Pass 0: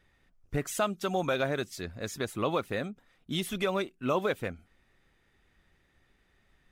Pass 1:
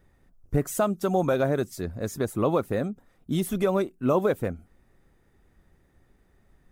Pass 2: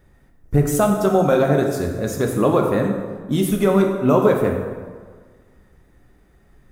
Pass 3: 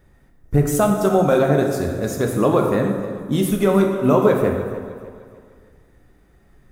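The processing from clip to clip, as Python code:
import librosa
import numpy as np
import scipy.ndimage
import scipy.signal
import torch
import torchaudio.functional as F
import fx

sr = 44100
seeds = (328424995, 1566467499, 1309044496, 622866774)

y1 = fx.peak_eq(x, sr, hz=3000.0, db=-14.5, octaves=2.3)
y1 = y1 * 10.0 ** (8.0 / 20.0)
y2 = fx.rev_plate(y1, sr, seeds[0], rt60_s=1.6, hf_ratio=0.6, predelay_ms=0, drr_db=1.5)
y2 = y2 * 10.0 ** (5.5 / 20.0)
y3 = fx.echo_feedback(y2, sr, ms=302, feedback_pct=43, wet_db=-15.5)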